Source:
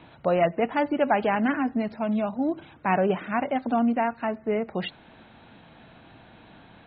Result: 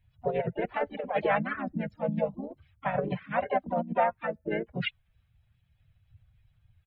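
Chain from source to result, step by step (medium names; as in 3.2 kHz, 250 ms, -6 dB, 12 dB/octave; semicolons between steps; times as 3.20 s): expander on every frequency bin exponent 2; compressor with a negative ratio -28 dBFS, ratio -0.5; static phaser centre 1.2 kHz, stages 6; harmony voices -5 st -3 dB, -3 st -8 dB, +5 st -12 dB; trim +2.5 dB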